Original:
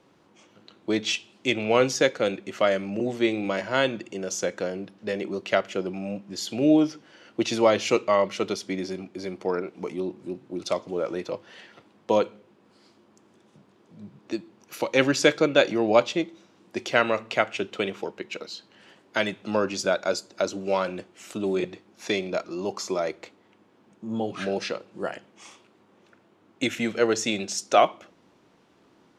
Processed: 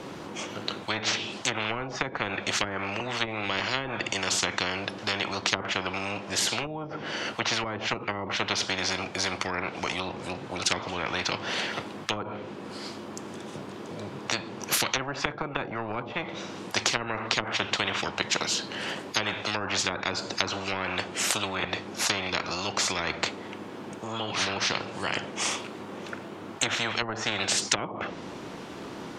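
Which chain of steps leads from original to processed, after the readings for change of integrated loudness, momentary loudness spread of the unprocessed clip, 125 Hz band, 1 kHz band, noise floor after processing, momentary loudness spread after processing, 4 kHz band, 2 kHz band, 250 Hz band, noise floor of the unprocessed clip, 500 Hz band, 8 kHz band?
-3.0 dB, 14 LU, -0.5 dB, -1.5 dB, -41 dBFS, 12 LU, +5.0 dB, +1.5 dB, -8.0 dB, -61 dBFS, -10.0 dB, +5.5 dB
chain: treble ducked by the level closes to 360 Hz, closed at -17 dBFS; spectral compressor 10:1; gain +4 dB

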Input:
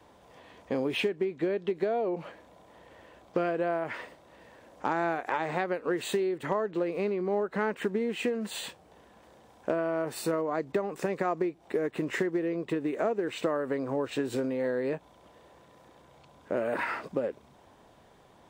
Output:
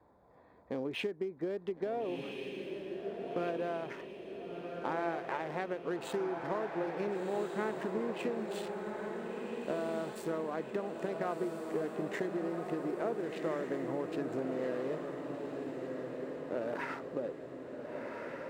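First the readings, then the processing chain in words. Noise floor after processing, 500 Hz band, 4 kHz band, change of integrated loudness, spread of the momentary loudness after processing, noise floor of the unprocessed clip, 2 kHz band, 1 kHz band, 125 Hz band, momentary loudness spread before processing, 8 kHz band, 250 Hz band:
-52 dBFS, -5.5 dB, -8.0 dB, -6.5 dB, 6 LU, -58 dBFS, -7.0 dB, -5.5 dB, -5.0 dB, 6 LU, -10.5 dB, -5.0 dB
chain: Wiener smoothing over 15 samples; diffused feedback echo 1.431 s, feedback 57%, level -4 dB; gain -7 dB; Opus 256 kbps 48000 Hz

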